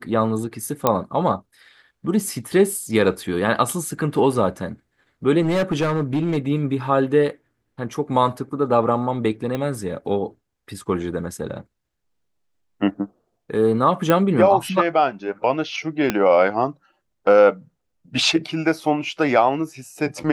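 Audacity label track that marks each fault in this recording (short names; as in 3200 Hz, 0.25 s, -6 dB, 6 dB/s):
0.870000	0.870000	pop -3 dBFS
5.410000	6.380000	clipped -16 dBFS
9.550000	9.550000	pop -13 dBFS
14.100000	14.100000	pop -5 dBFS
16.100000	16.100000	pop -5 dBFS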